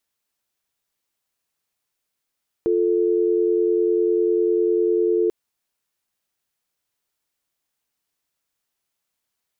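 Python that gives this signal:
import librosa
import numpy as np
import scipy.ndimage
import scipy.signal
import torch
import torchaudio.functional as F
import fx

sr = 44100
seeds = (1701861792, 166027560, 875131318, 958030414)

y = fx.call_progress(sr, length_s=2.64, kind='dial tone', level_db=-19.0)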